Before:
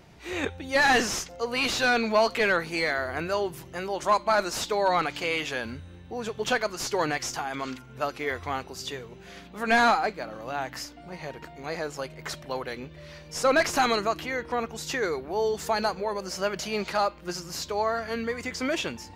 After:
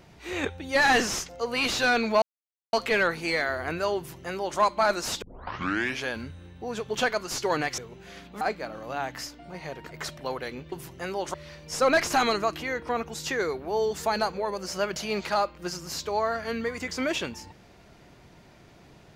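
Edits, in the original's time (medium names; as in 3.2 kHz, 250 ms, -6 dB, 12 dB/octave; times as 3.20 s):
2.22 s: insert silence 0.51 s
3.46–4.08 s: copy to 12.97 s
4.71 s: tape start 0.83 s
7.27–8.98 s: delete
9.61–9.99 s: delete
11.49–12.16 s: delete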